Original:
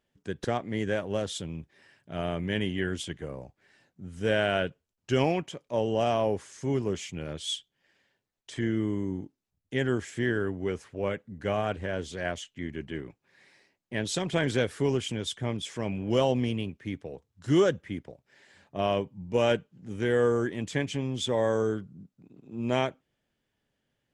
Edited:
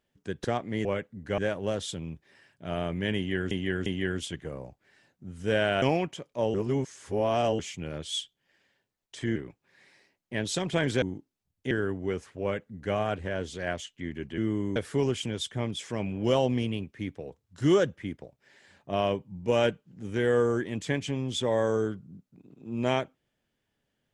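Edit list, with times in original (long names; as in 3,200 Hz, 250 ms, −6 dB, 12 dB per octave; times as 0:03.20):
0:02.63–0:02.98: repeat, 3 plays
0:04.59–0:05.17: remove
0:05.89–0:06.94: reverse
0:08.71–0:09.09: swap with 0:12.96–0:14.62
0:09.78–0:10.29: remove
0:11.00–0:11.53: duplicate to 0:00.85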